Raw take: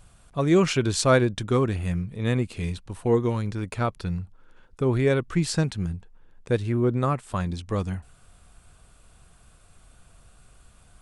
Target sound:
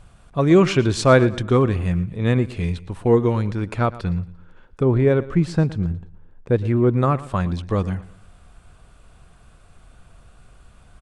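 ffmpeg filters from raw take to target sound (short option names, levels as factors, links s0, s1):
-af "asetnsamples=n=441:p=0,asendcmd='4.83 lowpass f 1000;6.65 lowpass f 2900',lowpass=f=2900:p=1,aecho=1:1:115|230|345:0.126|0.0466|0.0172,volume=1.88"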